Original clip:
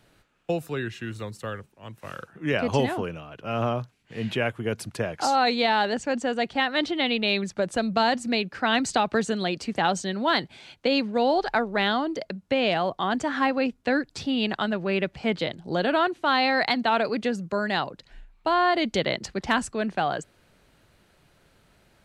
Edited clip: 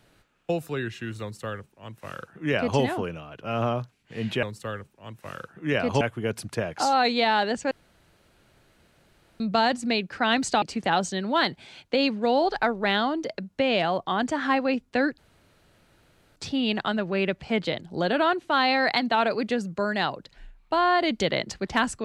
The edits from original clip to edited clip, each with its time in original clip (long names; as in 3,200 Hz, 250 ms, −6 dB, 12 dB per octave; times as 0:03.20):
0:01.22–0:02.80: duplicate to 0:04.43
0:06.13–0:07.82: fill with room tone
0:09.04–0:09.54: remove
0:14.10: splice in room tone 1.18 s